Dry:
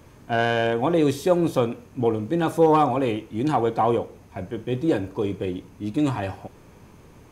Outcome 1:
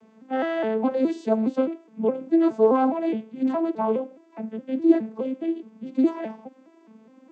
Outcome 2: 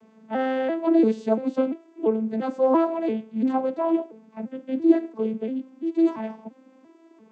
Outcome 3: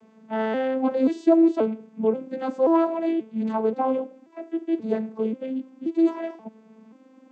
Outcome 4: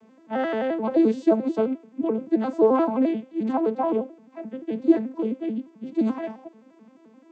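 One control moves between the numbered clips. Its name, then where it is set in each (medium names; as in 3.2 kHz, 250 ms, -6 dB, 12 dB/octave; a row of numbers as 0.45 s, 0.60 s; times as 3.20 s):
vocoder on a broken chord, a note every: 208 ms, 342 ms, 532 ms, 87 ms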